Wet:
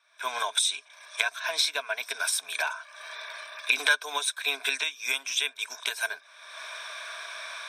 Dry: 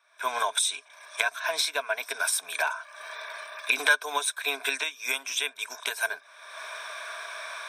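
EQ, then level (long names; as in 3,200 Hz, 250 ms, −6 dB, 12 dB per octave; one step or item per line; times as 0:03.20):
parametric band 4,000 Hz +7 dB 2.2 octaves
−4.5 dB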